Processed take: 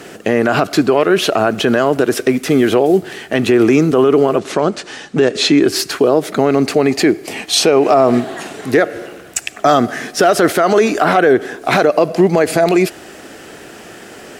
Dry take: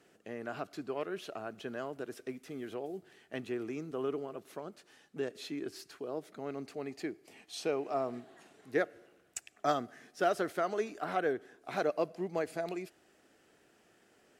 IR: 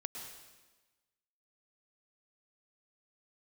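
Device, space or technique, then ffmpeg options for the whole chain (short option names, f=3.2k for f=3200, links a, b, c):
loud club master: -filter_complex "[0:a]acompressor=threshold=-37dB:ratio=1.5,asoftclip=type=hard:threshold=-24dB,alimiter=level_in=32.5dB:limit=-1dB:release=50:level=0:latency=1,asettb=1/sr,asplit=3[a][b][c];[a]atrim=end=4.384[d];[b]atrim=start=4.38:end=5.62,asetpts=PTS-STARTPTS,afade=t=in:d=0.004:c=qsin,afade=t=out:st=1.236:d=0.004:c=qsin,lowpass=f=8.4k:w=0.5412,lowpass=f=8.4k:w=1.3066[e];[c]atrim=start=5.616[f];[d][e]acrossfade=d=0.004:c1=hsin:c2=qsin[g];[g][f]acrossfade=d=0.004:c1=qsin:c2=hsin,volume=-1.5dB"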